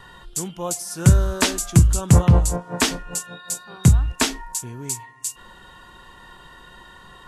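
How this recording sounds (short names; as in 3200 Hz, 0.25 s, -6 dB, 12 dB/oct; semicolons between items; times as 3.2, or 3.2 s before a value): noise floor -47 dBFS; spectral tilt -4.5 dB/oct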